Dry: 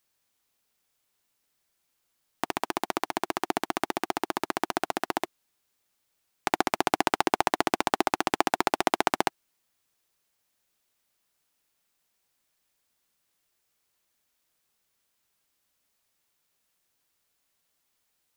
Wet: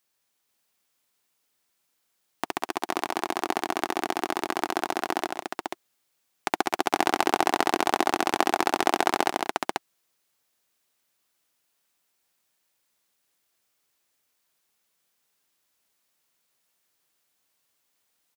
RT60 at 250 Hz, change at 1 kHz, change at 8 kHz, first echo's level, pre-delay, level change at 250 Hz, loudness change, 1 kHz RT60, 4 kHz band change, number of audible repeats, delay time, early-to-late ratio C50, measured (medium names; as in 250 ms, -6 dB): no reverb, +2.0 dB, +2.0 dB, -11.0 dB, no reverb, +1.5 dB, +1.5 dB, no reverb, +2.0 dB, 3, 136 ms, no reverb